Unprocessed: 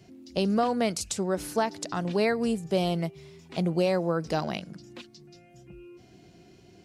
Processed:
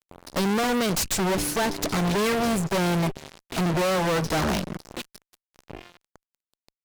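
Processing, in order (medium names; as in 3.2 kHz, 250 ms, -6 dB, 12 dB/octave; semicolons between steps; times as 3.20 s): Chebyshev shaper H 4 -13 dB, 6 -34 dB, 8 -16 dB, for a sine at -14 dBFS; fuzz box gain 41 dB, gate -43 dBFS; trim -8.5 dB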